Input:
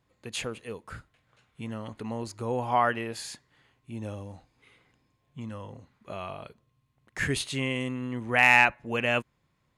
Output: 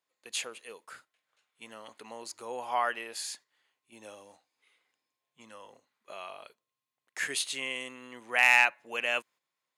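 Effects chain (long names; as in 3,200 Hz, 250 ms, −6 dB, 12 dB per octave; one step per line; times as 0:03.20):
high-pass filter 480 Hz 12 dB per octave
noise gate −52 dBFS, range −7 dB
high-shelf EQ 2,800 Hz +9 dB
level −5.5 dB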